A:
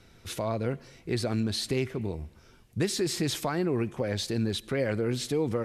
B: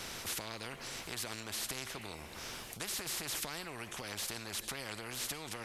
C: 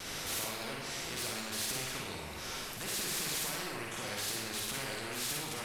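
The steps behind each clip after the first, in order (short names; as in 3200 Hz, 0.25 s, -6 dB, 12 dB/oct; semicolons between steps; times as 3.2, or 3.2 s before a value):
compressor 2:1, threshold -46 dBFS, peak gain reduction 12.5 dB; spectral compressor 4:1; gain +3.5 dB
overloaded stage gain 34 dB; reverb RT60 0.80 s, pre-delay 41 ms, DRR -2.5 dB; vibrato 0.4 Hz 10 cents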